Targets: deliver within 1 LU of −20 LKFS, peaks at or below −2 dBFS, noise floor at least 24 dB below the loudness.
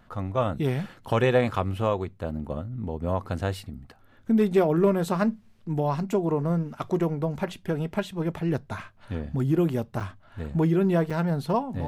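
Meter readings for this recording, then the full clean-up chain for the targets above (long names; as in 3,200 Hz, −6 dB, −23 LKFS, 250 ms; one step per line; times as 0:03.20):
number of dropouts 2; longest dropout 5.5 ms; integrated loudness −26.5 LKFS; sample peak −10.0 dBFS; target loudness −20.0 LKFS
→ repair the gap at 0:10.00/0:11.10, 5.5 ms
level +6.5 dB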